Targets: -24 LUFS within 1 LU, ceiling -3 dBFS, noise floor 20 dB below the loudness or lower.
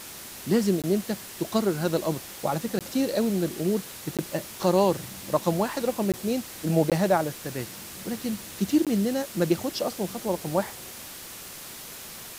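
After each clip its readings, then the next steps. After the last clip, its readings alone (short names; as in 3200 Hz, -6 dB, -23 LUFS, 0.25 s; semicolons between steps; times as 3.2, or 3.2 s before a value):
dropouts 6; longest dropout 17 ms; noise floor -41 dBFS; noise floor target -47 dBFS; loudness -27.0 LUFS; peak -9.0 dBFS; loudness target -24.0 LUFS
-> interpolate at 0.82/2.79/4.17/6.12/6.9/8.85, 17 ms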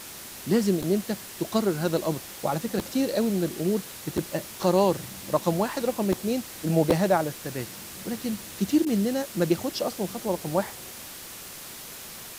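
dropouts 0; noise floor -41 dBFS; noise floor target -47 dBFS
-> noise print and reduce 6 dB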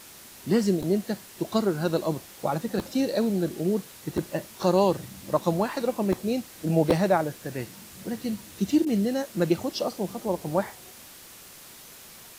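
noise floor -47 dBFS; loudness -27.0 LUFS; peak -8.0 dBFS; loudness target -24.0 LUFS
-> gain +3 dB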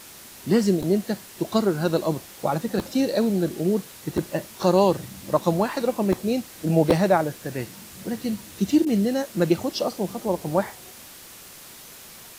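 loudness -24.0 LUFS; peak -5.0 dBFS; noise floor -44 dBFS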